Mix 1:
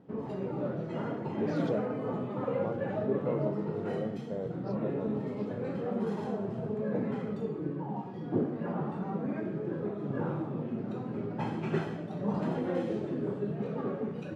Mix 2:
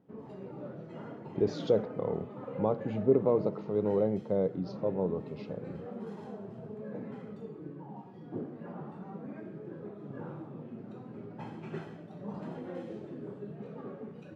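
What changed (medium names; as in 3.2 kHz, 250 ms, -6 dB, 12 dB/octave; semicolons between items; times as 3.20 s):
speech +8.0 dB; background -9.0 dB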